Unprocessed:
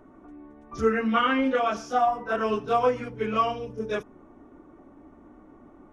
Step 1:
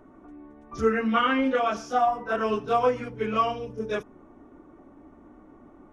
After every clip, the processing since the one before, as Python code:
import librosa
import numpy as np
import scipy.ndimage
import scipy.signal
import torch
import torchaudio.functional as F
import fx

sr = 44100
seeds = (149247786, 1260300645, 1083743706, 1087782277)

y = x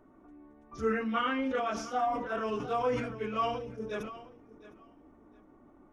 y = fx.echo_feedback(x, sr, ms=712, feedback_pct=23, wet_db=-17.5)
y = fx.sustainer(y, sr, db_per_s=56.0)
y = y * librosa.db_to_amplitude(-8.0)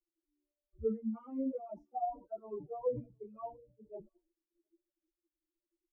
y = fx.bin_expand(x, sr, power=3.0)
y = scipy.signal.sosfilt(scipy.signal.cheby2(4, 40, 1500.0, 'lowpass', fs=sr, output='sos'), y)